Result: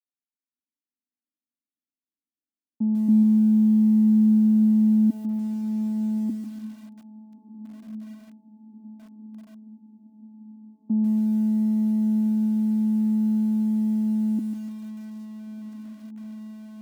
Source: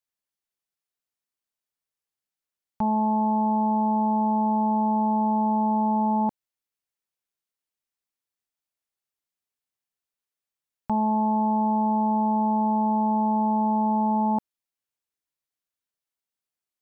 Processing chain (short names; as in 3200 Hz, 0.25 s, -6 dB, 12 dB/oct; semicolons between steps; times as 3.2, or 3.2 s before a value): 3.08–5.1 tilt -4 dB/oct; limiter -13 dBFS, peak gain reduction 3 dB; AGC gain up to 11.5 dB; Butterworth band-pass 260 Hz, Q 3; on a send: diffused feedback echo 1.467 s, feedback 66%, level -14 dB; on the sum: lo-fi delay 0.145 s, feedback 35%, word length 7-bit, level -11 dB; gain -2.5 dB